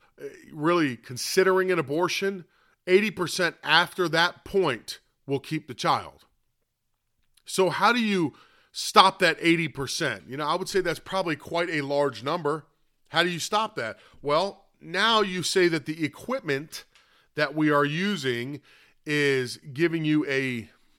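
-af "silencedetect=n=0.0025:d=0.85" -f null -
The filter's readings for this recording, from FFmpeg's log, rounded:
silence_start: 6.25
silence_end: 7.37 | silence_duration: 1.12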